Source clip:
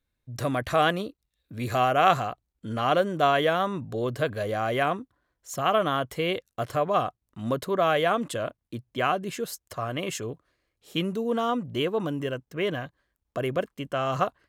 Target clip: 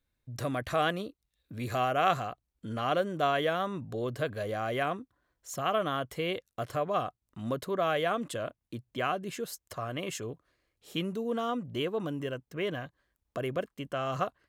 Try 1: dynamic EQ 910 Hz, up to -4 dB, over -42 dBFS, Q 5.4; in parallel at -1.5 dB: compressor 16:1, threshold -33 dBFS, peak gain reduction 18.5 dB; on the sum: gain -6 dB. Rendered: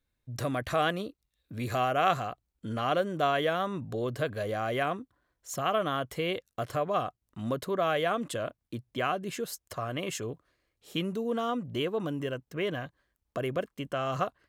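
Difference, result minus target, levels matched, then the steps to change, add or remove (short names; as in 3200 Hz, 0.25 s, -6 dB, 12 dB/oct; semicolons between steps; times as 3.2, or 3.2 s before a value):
compressor: peak gain reduction -9 dB
change: compressor 16:1, threshold -42.5 dBFS, peak gain reduction 27.5 dB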